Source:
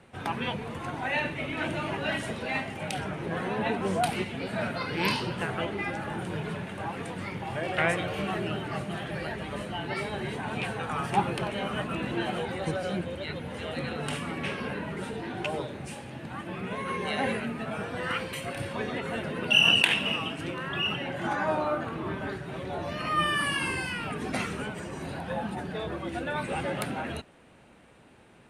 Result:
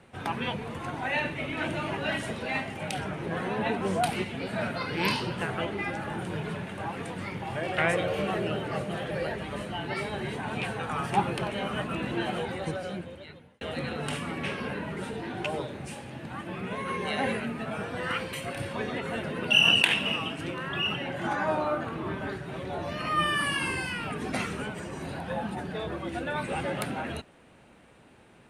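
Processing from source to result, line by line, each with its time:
7.93–9.38 s: peaking EQ 510 Hz +9 dB 0.44 oct
12.45–13.61 s: fade out

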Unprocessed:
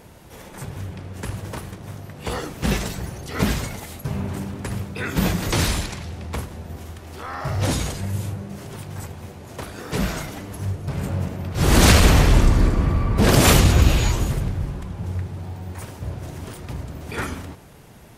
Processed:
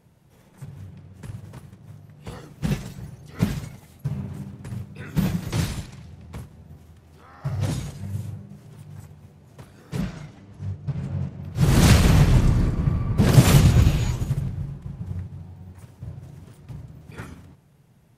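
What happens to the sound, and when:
10.01–11.43 s: low-pass 6.3 kHz
14.59–15.00 s: echo throw 250 ms, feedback 50%, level -6 dB
whole clip: peaking EQ 140 Hz +11.5 dB 1.1 oct; upward expansion 1.5:1, over -29 dBFS; trim -4 dB

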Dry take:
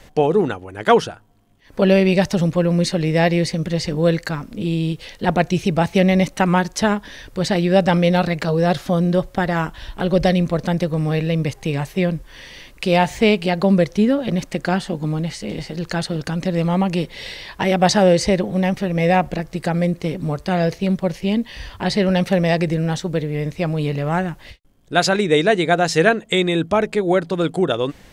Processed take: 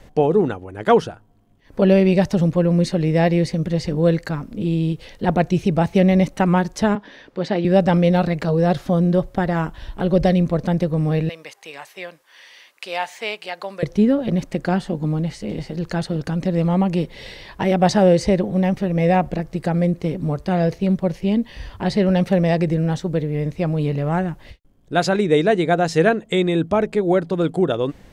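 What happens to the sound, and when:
6.95–7.65 s: three-band isolator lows -22 dB, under 180 Hz, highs -17 dB, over 5.1 kHz
11.29–13.83 s: high-pass 1 kHz
whole clip: tilt shelf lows +4 dB, about 1.1 kHz; trim -3 dB

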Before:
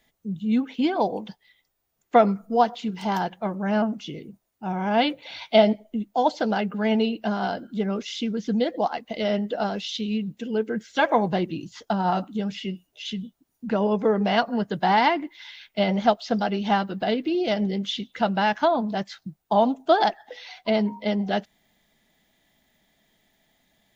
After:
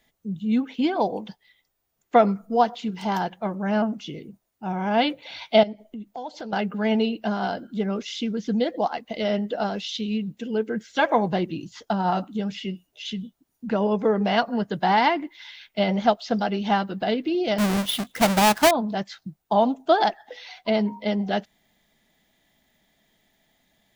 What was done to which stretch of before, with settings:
5.63–6.53 s: compression 3:1, threshold -35 dBFS
17.58–18.71 s: square wave that keeps the level

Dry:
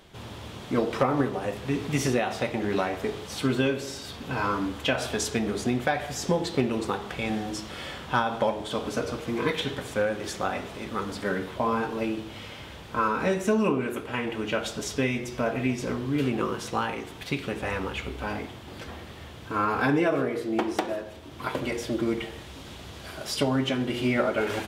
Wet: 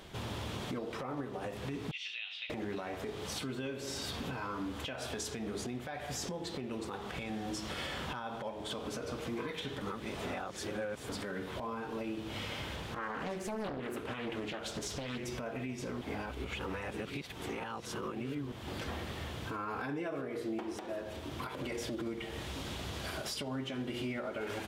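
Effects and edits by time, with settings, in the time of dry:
1.91–2.50 s: Butterworth band-pass 3.1 kHz, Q 2.5
9.82–11.09 s: reverse
12.76–15.27 s: loudspeaker Doppler distortion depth 0.87 ms
16.01–18.52 s: reverse
21.48–22.07 s: compression, threshold -29 dBFS
whole clip: compression 10:1, threshold -36 dBFS; peak limiter -31 dBFS; trim +2 dB

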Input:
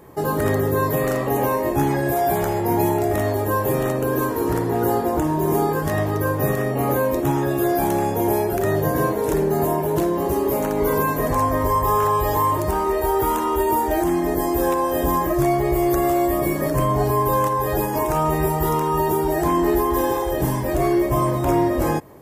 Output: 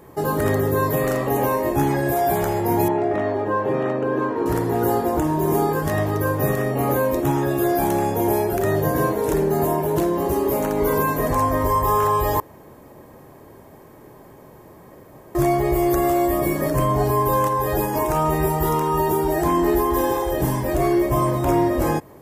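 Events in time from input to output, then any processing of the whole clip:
2.88–4.46 s: band-pass 160–2500 Hz
12.40–15.35 s: room tone

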